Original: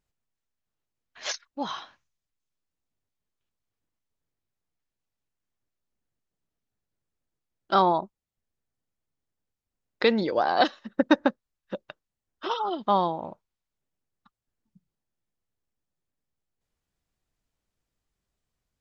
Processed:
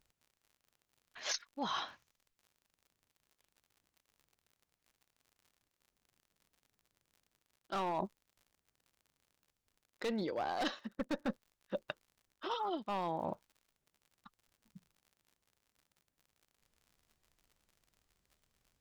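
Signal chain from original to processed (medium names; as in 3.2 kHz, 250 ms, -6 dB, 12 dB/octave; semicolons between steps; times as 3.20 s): single-diode clipper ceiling -10 dBFS; hard clipper -19.5 dBFS, distortion -9 dB; reverse; compression 16:1, threshold -37 dBFS, peak gain reduction 16.5 dB; reverse; crackle 69 per s -57 dBFS; trim +3 dB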